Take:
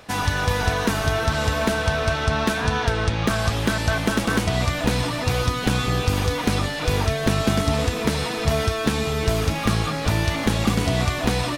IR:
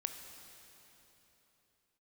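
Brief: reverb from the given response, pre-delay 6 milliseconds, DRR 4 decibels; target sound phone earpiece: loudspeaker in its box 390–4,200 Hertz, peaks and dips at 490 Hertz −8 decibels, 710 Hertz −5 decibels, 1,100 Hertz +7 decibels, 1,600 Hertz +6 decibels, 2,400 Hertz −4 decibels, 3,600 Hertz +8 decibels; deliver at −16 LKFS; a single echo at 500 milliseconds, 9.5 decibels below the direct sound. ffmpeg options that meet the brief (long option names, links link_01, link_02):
-filter_complex "[0:a]aecho=1:1:500:0.335,asplit=2[link_01][link_02];[1:a]atrim=start_sample=2205,adelay=6[link_03];[link_02][link_03]afir=irnorm=-1:irlink=0,volume=-3.5dB[link_04];[link_01][link_04]amix=inputs=2:normalize=0,highpass=390,equalizer=frequency=490:width_type=q:width=4:gain=-8,equalizer=frequency=710:width_type=q:width=4:gain=-5,equalizer=frequency=1100:width_type=q:width=4:gain=7,equalizer=frequency=1600:width_type=q:width=4:gain=6,equalizer=frequency=2400:width_type=q:width=4:gain=-4,equalizer=frequency=3600:width_type=q:width=4:gain=8,lowpass=frequency=4200:width=0.5412,lowpass=frequency=4200:width=1.3066,volume=5dB"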